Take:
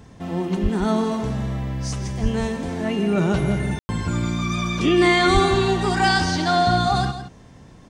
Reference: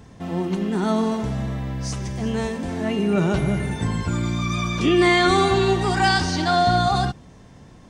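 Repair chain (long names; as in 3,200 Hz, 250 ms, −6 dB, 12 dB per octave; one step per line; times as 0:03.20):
high-pass at the plosives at 0:00.62/0:02.22/0:05.33
ambience match 0:03.79–0:03.89
echo removal 166 ms −11.5 dB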